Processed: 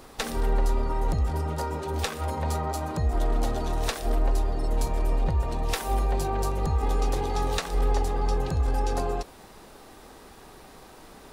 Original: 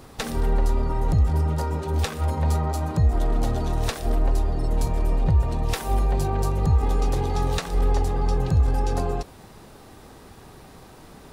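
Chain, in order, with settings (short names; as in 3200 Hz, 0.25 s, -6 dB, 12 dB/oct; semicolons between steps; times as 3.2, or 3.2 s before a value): bell 110 Hz -10 dB 1.8 oct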